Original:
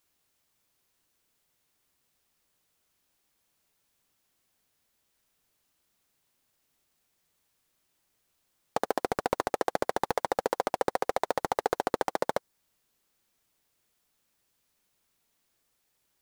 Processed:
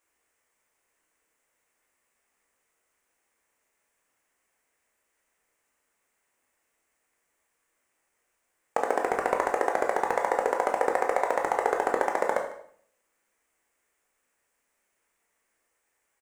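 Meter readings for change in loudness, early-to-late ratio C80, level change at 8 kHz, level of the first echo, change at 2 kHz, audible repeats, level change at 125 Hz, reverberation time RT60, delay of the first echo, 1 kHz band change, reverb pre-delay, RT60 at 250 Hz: +4.0 dB, 10.5 dB, 0.0 dB, -18.5 dB, +5.5 dB, 1, n/a, 0.60 s, 0.151 s, +4.0 dB, 14 ms, 0.70 s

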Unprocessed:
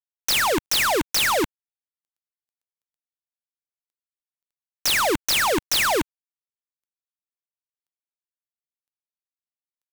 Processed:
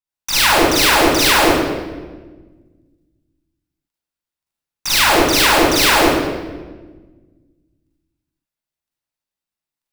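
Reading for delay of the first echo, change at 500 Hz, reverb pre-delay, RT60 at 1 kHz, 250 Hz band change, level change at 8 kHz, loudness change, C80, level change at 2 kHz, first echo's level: none, +9.0 dB, 39 ms, 1.2 s, +11.5 dB, +6.5 dB, +8.0 dB, -0.5 dB, +8.5 dB, none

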